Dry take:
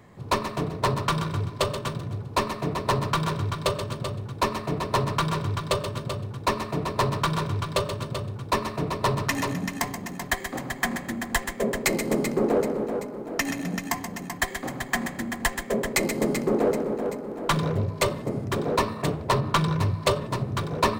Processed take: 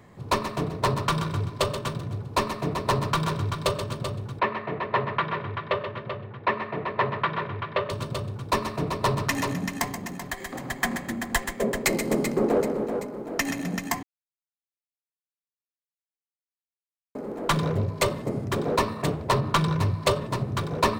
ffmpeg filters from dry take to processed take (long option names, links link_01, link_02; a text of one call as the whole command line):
ffmpeg -i in.wav -filter_complex "[0:a]asettb=1/sr,asplit=3[link_01][link_02][link_03];[link_01]atrim=end=4.394[link_04];[link_02]atrim=start=4.39:end=7.9,asetpts=PTS-STARTPTS,afade=type=in:duration=0.004:curve=qsin,afade=type=out:start_time=3.506:duration=0.004:curve=qsin,highpass=140,equalizer=frequency=160:width_type=q:width=4:gain=-7,equalizer=frequency=280:width_type=q:width=4:gain=-9,equalizer=frequency=1900:width_type=q:width=4:gain=7,lowpass=frequency=3000:width=0.5412,lowpass=frequency=3000:width=1.3066[link_05];[link_03]atrim=start=7.896[link_06];[link_04][link_05]acrossfade=duration=0.004:curve1=hsin:curve2=qsin[link_07];[link_07][link_06]acrossfade=duration=0.004:curve1=qsin:curve2=hsin,asettb=1/sr,asplit=3[link_08][link_09][link_10];[link_08]atrim=end=10.184[link_11];[link_09]atrim=start=10.18:end=10.69,asetpts=PTS-STARTPTS,afade=type=in:duration=0.004:curve=qsin,afade=type=out:start_time=0.506:duration=0.004:curve=qsin,acompressor=threshold=-32dB:ratio=2:attack=3.2:release=140:knee=1:detection=peak[link_12];[link_10]atrim=start=10.686[link_13];[link_11][link_12]acrossfade=duration=0.004:curve1=hsin:curve2=qsin[link_14];[link_14][link_13]acrossfade=duration=0.004:curve1=qsin:curve2=hsin,asplit=3[link_15][link_16][link_17];[link_15]atrim=end=14.03,asetpts=PTS-STARTPTS,afade=type=out:start_time=14.026:duration=0.004:curve=hsin[link_18];[link_16]atrim=start=14.03:end=17.15,asetpts=PTS-STARTPTS,volume=0[link_19];[link_17]atrim=start=17.15,asetpts=PTS-STARTPTS,afade=type=in:duration=0.004:curve=hsin[link_20];[link_18][link_19][link_20]concat=n=3:v=0:a=1" out.wav